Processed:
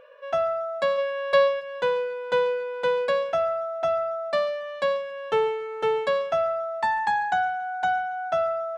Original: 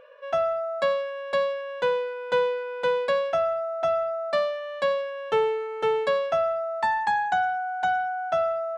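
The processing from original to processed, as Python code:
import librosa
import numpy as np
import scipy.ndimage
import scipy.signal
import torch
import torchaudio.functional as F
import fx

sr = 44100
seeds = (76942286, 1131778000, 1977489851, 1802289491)

y = fx.comb(x, sr, ms=1.8, depth=0.9, at=(0.97, 1.59), fade=0.02)
y = fx.echo_feedback(y, sr, ms=140, feedback_pct=44, wet_db=-18.5)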